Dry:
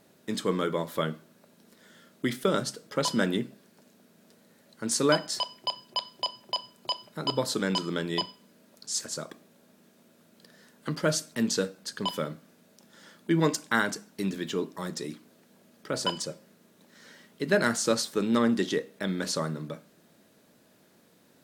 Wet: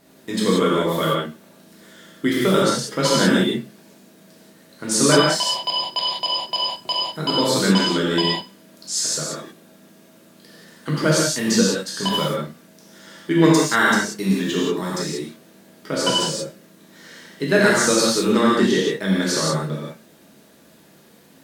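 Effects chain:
reverb whose tail is shaped and stops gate 210 ms flat, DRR −6 dB
level +3.5 dB

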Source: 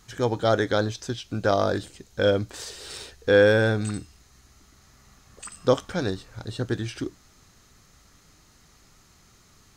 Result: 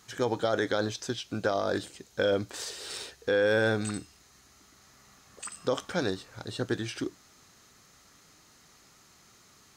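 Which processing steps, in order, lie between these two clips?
high-pass filter 240 Hz 6 dB per octave
brickwall limiter −16.5 dBFS, peak gain reduction 9.5 dB

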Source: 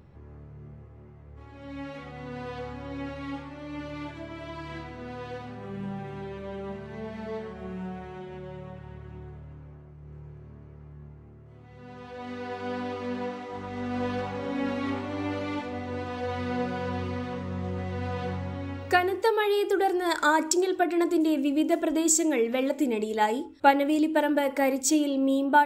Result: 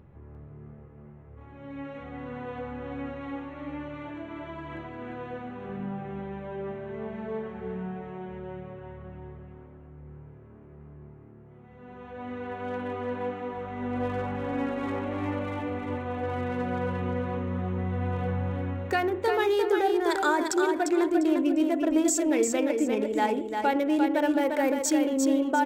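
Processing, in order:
adaptive Wiener filter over 9 samples
brickwall limiter −17 dBFS, peak gain reduction 8.5 dB
repeating echo 349 ms, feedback 27%, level −5 dB

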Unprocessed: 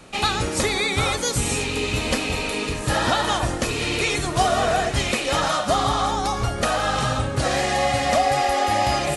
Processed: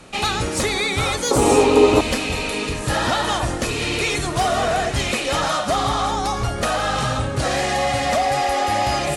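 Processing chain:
sine wavefolder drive 4 dB, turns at −8 dBFS
0:01.31–0:02.01: flat-topped bell 570 Hz +14.5 dB 2.5 octaves
level −6 dB

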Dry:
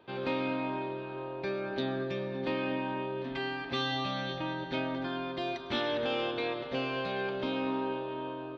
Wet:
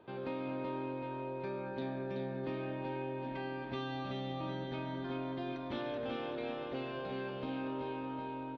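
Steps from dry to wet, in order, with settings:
on a send: repeating echo 379 ms, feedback 48%, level −3.5 dB
on the sum: downward compressor 1.5 to 1, threshold −49 dBFS, peak gain reduction 8 dB
high-shelf EQ 2,000 Hz −11 dB
level +1 dB

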